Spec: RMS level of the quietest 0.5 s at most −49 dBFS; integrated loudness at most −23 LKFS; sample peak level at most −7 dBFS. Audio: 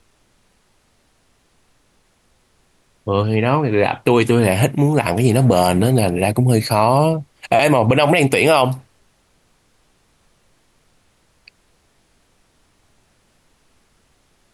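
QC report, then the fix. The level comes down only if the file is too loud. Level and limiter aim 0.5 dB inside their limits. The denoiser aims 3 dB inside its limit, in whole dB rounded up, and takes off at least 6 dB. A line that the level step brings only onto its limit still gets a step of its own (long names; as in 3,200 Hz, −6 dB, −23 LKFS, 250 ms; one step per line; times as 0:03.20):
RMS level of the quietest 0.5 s −60 dBFS: in spec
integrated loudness −16.0 LKFS: out of spec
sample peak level −2.5 dBFS: out of spec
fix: level −7.5 dB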